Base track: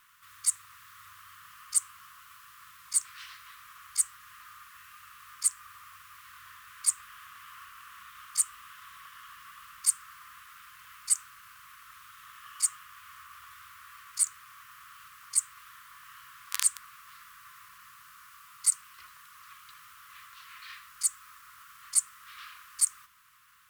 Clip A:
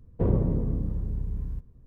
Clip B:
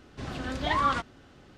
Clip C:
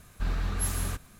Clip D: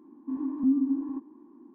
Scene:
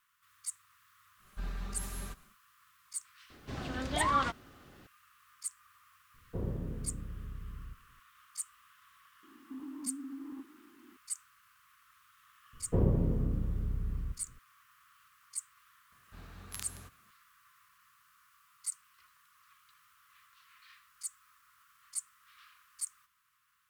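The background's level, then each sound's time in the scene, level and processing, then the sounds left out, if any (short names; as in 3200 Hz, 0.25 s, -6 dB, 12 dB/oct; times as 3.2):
base track -13 dB
1.17 add C -11 dB, fades 0.10 s + comb 5.1 ms, depth 61%
3.3 add B -3.5 dB
6.14 add A -13 dB
9.23 add D -7.5 dB + compressor, threshold -33 dBFS
12.53 add A -4 dB
15.92 add C -16.5 dB + HPF 69 Hz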